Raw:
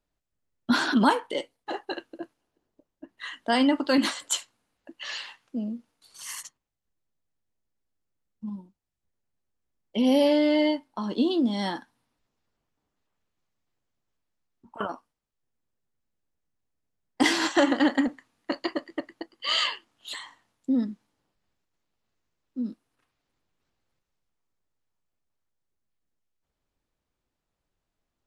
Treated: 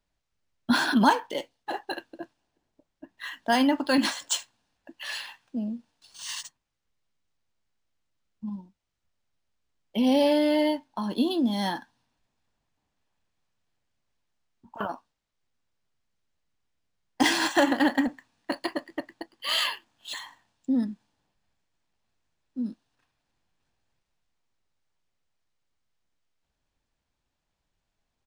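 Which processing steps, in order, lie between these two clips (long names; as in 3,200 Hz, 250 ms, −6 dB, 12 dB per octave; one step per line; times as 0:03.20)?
high-shelf EQ 8,500 Hz +10 dB
comb filter 1.2 ms, depth 34%
linearly interpolated sample-rate reduction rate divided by 3×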